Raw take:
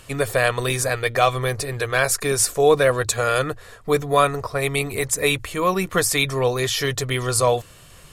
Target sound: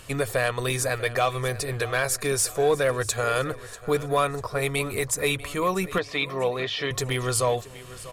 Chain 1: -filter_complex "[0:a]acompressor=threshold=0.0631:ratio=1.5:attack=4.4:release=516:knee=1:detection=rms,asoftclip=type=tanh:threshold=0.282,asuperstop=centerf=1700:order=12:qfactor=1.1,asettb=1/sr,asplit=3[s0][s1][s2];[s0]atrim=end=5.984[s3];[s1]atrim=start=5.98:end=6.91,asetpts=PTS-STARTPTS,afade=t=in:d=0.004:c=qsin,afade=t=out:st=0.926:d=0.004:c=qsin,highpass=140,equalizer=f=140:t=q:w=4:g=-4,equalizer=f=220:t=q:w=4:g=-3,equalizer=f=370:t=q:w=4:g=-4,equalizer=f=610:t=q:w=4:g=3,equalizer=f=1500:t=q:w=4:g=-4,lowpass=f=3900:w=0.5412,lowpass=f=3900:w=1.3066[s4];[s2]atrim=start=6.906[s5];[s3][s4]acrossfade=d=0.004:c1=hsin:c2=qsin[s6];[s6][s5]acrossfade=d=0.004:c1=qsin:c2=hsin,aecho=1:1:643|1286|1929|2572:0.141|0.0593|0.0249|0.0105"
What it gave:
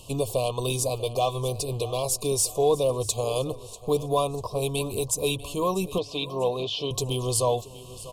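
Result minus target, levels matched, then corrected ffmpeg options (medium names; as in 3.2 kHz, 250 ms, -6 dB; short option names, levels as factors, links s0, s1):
2 kHz band -13.0 dB
-filter_complex "[0:a]acompressor=threshold=0.0631:ratio=1.5:attack=4.4:release=516:knee=1:detection=rms,asoftclip=type=tanh:threshold=0.282,asettb=1/sr,asplit=3[s0][s1][s2];[s0]atrim=end=5.984[s3];[s1]atrim=start=5.98:end=6.91,asetpts=PTS-STARTPTS,afade=t=in:d=0.004:c=qsin,afade=t=out:st=0.926:d=0.004:c=qsin,highpass=140,equalizer=f=140:t=q:w=4:g=-4,equalizer=f=220:t=q:w=4:g=-3,equalizer=f=370:t=q:w=4:g=-4,equalizer=f=610:t=q:w=4:g=3,equalizer=f=1500:t=q:w=4:g=-4,lowpass=f=3900:w=0.5412,lowpass=f=3900:w=1.3066[s4];[s2]atrim=start=6.906[s5];[s3][s4]acrossfade=d=0.004:c1=hsin:c2=qsin[s6];[s6][s5]acrossfade=d=0.004:c1=qsin:c2=hsin,aecho=1:1:643|1286|1929|2572:0.141|0.0593|0.0249|0.0105"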